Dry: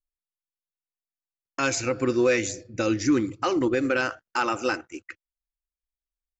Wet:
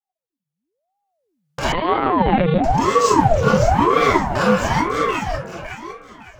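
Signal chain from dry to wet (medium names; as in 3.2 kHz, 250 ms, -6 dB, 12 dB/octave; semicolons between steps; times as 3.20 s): recorder AGC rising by 9.4 dB/s; peaking EQ 350 Hz +15 dB 0.3 oct; hum notches 60/120/180/240/300 Hz; compression 2.5:1, threshold -27 dBFS, peak gain reduction 13 dB; waveshaping leveller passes 3; transient shaper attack -1 dB, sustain +5 dB; flange 0.39 Hz, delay 2.7 ms, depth 4.1 ms, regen -43%; echo whose repeats swap between lows and highs 279 ms, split 830 Hz, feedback 57%, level -2 dB; reverberation RT60 0.40 s, pre-delay 5 ms, DRR -8.5 dB; 1.72–2.64 s: LPC vocoder at 8 kHz pitch kept; ring modulator with a swept carrier 480 Hz, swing 70%, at 1 Hz; trim -1 dB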